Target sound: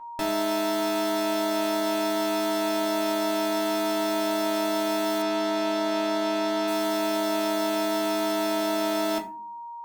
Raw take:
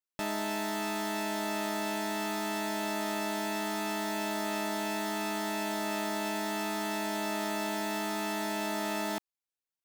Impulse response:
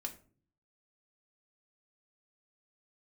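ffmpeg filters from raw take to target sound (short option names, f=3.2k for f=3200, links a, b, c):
-filter_complex "[0:a]aeval=exprs='val(0)+0.00562*sin(2*PI*940*n/s)':c=same[a];[1:a]atrim=start_sample=2205,asetrate=48510,aresample=44100[b];[a][b]afir=irnorm=-1:irlink=0,asettb=1/sr,asplit=3[c][d][e];[c]atrim=end=5.224[f];[d]atrim=start=5.22:end=6.68,asetpts=PTS-STARTPTS,afade=t=in:d=0.004:c=qsin,afade=t=out:st=1.456:d=0.004:c=qsin,acrossover=split=6600[g][h];[h]acompressor=threshold=-60dB:ratio=4:attack=1:release=60[i];[g][i]amix=inputs=2:normalize=0[j];[e]atrim=start=6.676[k];[f][j]acrossfade=d=0.004:c1=hsin:c2=qsin[l];[l][k]acrossfade=d=0.004:c1=qsin:c2=hsin,volume=8.5dB"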